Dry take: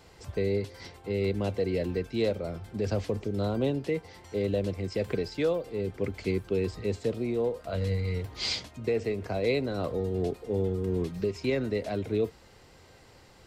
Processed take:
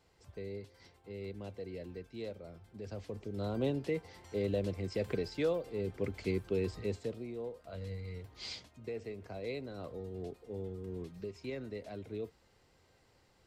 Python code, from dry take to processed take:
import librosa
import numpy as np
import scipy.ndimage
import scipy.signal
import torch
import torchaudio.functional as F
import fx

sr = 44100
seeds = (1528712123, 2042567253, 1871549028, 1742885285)

y = fx.gain(x, sr, db=fx.line((2.9, -15.0), (3.66, -5.0), (6.83, -5.0), (7.29, -13.0)))